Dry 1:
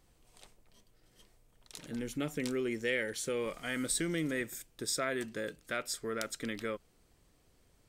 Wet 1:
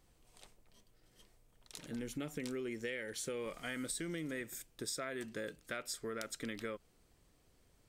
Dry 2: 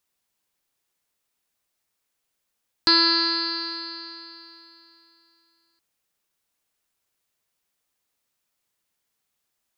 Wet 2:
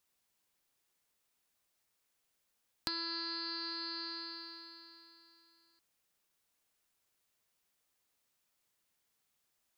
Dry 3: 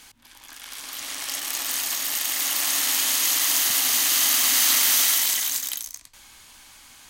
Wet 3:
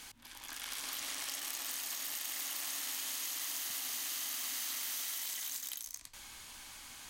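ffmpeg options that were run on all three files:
-af "acompressor=threshold=0.0178:ratio=8,volume=0.794"

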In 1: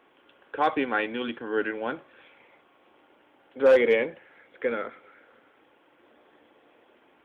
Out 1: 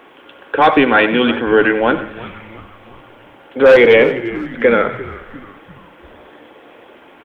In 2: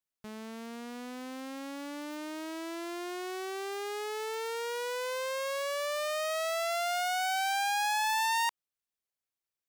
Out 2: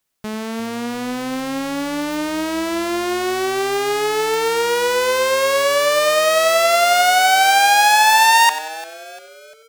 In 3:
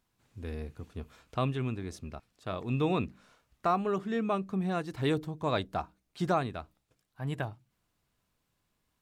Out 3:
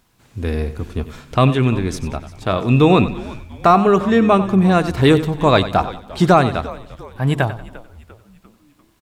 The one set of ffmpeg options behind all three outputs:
-filter_complex "[0:a]asplit=2[s0][s1];[s1]asplit=4[s2][s3][s4][s5];[s2]adelay=347,afreqshift=-110,volume=0.112[s6];[s3]adelay=694,afreqshift=-220,volume=0.0562[s7];[s4]adelay=1041,afreqshift=-330,volume=0.0282[s8];[s5]adelay=1388,afreqshift=-440,volume=0.014[s9];[s6][s7][s8][s9]amix=inputs=4:normalize=0[s10];[s0][s10]amix=inputs=2:normalize=0,apsyclip=10.6,asplit=2[s11][s12];[s12]aecho=0:1:93|186|279:0.211|0.0761|0.0274[s13];[s11][s13]amix=inputs=2:normalize=0,volume=0.668"

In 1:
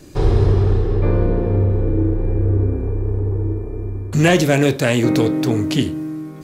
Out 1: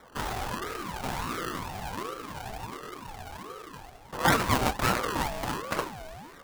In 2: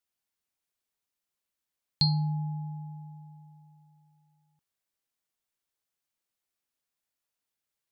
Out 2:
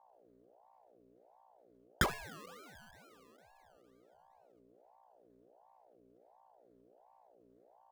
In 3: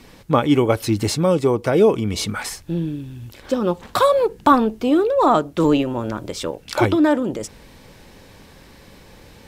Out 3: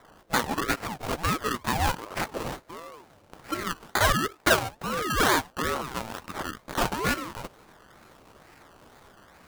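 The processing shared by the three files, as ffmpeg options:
-af "highpass=670,acrusher=samples=23:mix=1:aa=0.000001:lfo=1:lforange=13.8:lforate=2.2,asoftclip=type=tanh:threshold=0.335,aeval=exprs='val(0)+0.000794*(sin(2*PI*60*n/s)+sin(2*PI*2*60*n/s)/2+sin(2*PI*3*60*n/s)/3+sin(2*PI*4*60*n/s)/4+sin(2*PI*5*60*n/s)/5)':c=same,aeval=exprs='val(0)*sin(2*PI*590*n/s+590*0.45/1.4*sin(2*PI*1.4*n/s))':c=same"

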